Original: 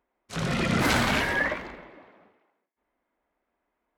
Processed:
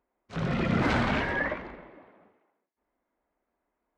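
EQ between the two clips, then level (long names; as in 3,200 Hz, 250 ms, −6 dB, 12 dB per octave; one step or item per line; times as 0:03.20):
head-to-tape spacing loss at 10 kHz 24 dB
0.0 dB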